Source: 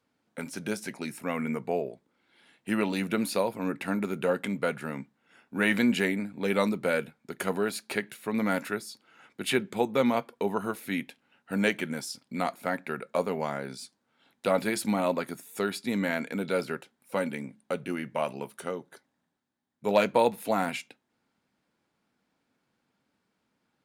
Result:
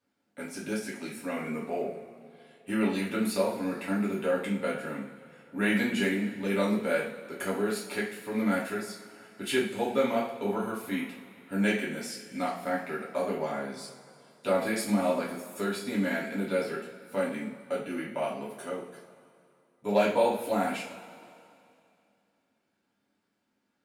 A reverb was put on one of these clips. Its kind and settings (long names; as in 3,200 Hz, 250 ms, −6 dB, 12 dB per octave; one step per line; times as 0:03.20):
coupled-rooms reverb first 0.4 s, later 2.6 s, from −18 dB, DRR −6 dB
level −8.5 dB